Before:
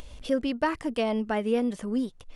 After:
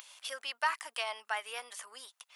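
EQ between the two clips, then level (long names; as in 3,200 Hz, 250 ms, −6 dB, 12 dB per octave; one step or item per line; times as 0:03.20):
high-pass filter 930 Hz 24 dB per octave
high-shelf EQ 9,100 Hz +12 dB
0.0 dB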